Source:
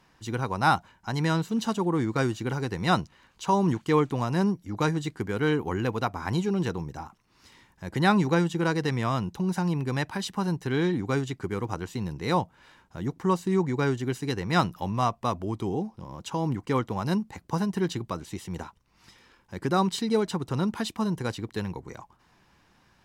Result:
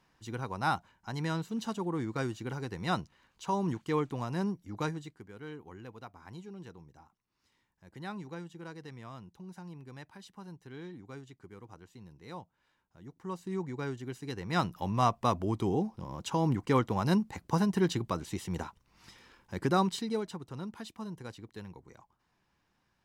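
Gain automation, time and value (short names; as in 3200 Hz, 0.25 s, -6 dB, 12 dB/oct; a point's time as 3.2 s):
4.85 s -8 dB
5.25 s -19.5 dB
13.01 s -19.5 dB
13.52 s -11 dB
14.17 s -11 dB
15.11 s -0.5 dB
19.61 s -0.5 dB
20.47 s -13.5 dB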